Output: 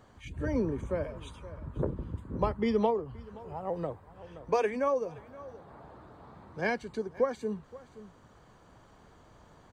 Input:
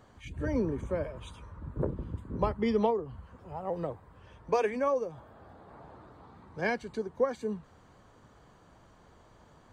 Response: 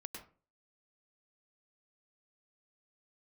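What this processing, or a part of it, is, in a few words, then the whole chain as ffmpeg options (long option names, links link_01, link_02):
ducked delay: -filter_complex "[0:a]asplit=3[link_01][link_02][link_03];[link_02]adelay=523,volume=-5.5dB[link_04];[link_03]apad=whole_len=451910[link_05];[link_04][link_05]sidechaincompress=threshold=-45dB:ratio=8:attack=16:release=880[link_06];[link_01][link_06]amix=inputs=2:normalize=0"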